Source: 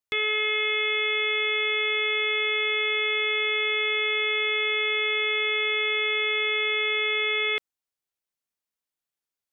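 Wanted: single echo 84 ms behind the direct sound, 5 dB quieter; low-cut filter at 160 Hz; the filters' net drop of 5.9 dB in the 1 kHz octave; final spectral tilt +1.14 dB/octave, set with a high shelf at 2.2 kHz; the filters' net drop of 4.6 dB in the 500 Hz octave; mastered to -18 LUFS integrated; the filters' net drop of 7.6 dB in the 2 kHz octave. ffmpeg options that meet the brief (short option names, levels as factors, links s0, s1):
-af "highpass=160,equalizer=f=500:t=o:g=-4.5,equalizer=f=1000:t=o:g=-3.5,equalizer=f=2000:t=o:g=-5,highshelf=f=2200:g=-5,aecho=1:1:84:0.562,volume=3.76"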